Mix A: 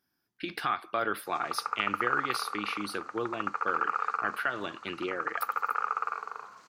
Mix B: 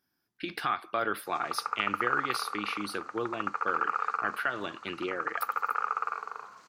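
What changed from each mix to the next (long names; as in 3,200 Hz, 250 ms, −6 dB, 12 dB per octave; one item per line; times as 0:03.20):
nothing changed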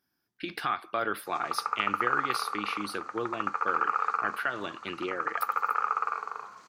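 background: send +9.0 dB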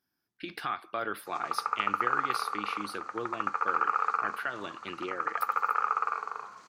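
speech −3.5 dB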